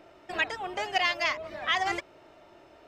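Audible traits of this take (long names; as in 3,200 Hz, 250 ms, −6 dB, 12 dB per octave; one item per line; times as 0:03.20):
background noise floor −56 dBFS
spectral slope −1.5 dB per octave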